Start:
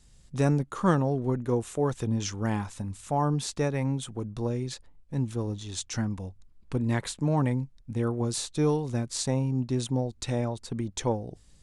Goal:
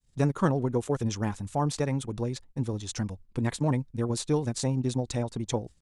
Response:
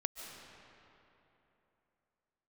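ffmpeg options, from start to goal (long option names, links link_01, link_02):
-af "agate=range=-33dB:threshold=-47dB:ratio=3:detection=peak,atempo=2"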